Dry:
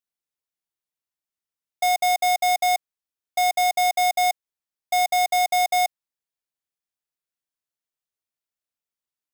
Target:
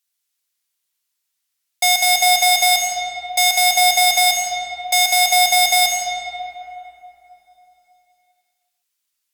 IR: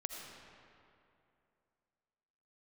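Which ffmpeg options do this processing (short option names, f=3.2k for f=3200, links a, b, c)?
-filter_complex "[0:a]tiltshelf=f=1.4k:g=-9.5,asplit=2[a][b];[b]aeval=exprs='(mod(2.99*val(0)+1,2)-1)/2.99':c=same,volume=-6dB[c];[a][c]amix=inputs=2:normalize=0[d];[1:a]atrim=start_sample=2205,asetrate=35721,aresample=44100[e];[d][e]afir=irnorm=-1:irlink=0,volume=5dB"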